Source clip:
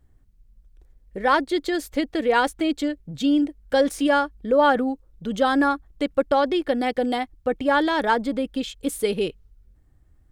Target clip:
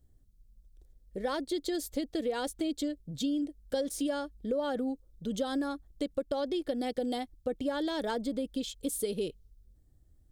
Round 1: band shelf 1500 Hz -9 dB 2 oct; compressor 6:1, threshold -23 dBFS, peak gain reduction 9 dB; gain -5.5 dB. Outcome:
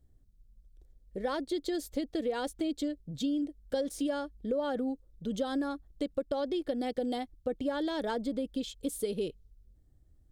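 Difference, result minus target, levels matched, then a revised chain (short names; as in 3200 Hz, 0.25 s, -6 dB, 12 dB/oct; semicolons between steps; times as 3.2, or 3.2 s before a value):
8000 Hz band -4.5 dB
band shelf 1500 Hz -9 dB 2 oct; compressor 6:1, threshold -23 dBFS, peak gain reduction 9 dB; high shelf 4700 Hz +6 dB; gain -5.5 dB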